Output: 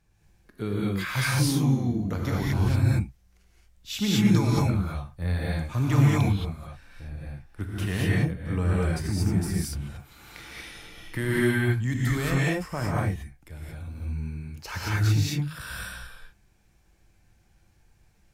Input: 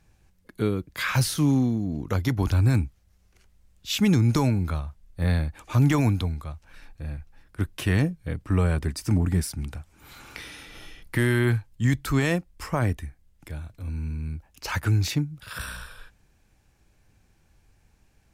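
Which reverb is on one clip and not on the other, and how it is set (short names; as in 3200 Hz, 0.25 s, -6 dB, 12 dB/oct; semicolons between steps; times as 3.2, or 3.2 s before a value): non-linear reverb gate 0.25 s rising, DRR -5.5 dB; gain -7 dB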